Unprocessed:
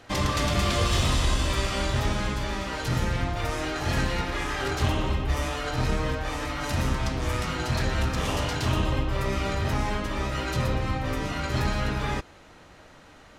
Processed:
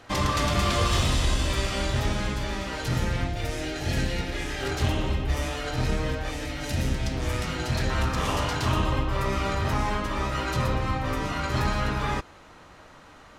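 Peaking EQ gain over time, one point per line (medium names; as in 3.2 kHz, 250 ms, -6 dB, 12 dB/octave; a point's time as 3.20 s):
peaking EQ 1.1 kHz 0.67 oct
+3 dB
from 1.03 s -3 dB
from 3.27 s -13.5 dB
from 4.63 s -5 dB
from 6.31 s -13.5 dB
from 7.12 s -4.5 dB
from 7.90 s +5 dB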